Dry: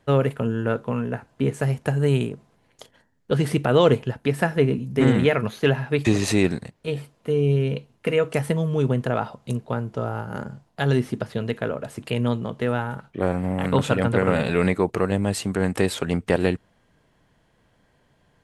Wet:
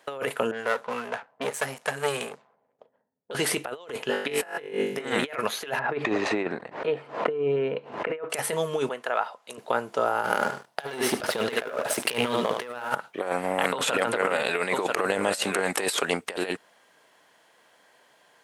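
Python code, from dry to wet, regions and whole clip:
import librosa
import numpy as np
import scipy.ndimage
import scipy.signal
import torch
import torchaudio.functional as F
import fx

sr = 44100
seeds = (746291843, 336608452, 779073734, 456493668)

y = fx.chain(x, sr, fx.halfwave_gain(db=-12.0),
    fx.env_lowpass(base_hz=330.0, full_db=-25.0),
    fx.peak_eq(hz=330.0, db=-13.0, octaves=0.33), at=(0.51, 3.31))
y = fx.chain(y, sr, fx.high_shelf(hz=5100.0, db=-5.0),
    fx.room_flutter(wall_m=3.5, rt60_s=0.63), at=(4.05, 5.05))
y = fx.chain(y, sr, fx.lowpass(hz=1500.0, slope=12),
    fx.pre_swell(db_per_s=96.0), at=(5.79, 8.3))
y = fx.chain(y, sr, fx.highpass(hz=1300.0, slope=6),
    fx.high_shelf(hz=2700.0, db=-12.0), at=(8.89, 9.58))
y = fx.chain(y, sr, fx.notch(hz=7000.0, q=11.0),
    fx.echo_feedback(ms=74, feedback_pct=25, wet_db=-11),
    fx.leveller(passes=2), at=(10.24, 12.95))
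y = fx.chain(y, sr, fx.echo_single(ms=985, db=-15.0),
    fx.over_compress(threshold_db=-23.0, ratio=-0.5), at=(13.69, 16.0))
y = scipy.signal.sosfilt(scipy.signal.butter(2, 570.0, 'highpass', fs=sr, output='sos'), y)
y = fx.high_shelf(y, sr, hz=6100.0, db=4.5)
y = fx.over_compress(y, sr, threshold_db=-30.0, ratio=-0.5)
y = y * 10.0 ** (4.0 / 20.0)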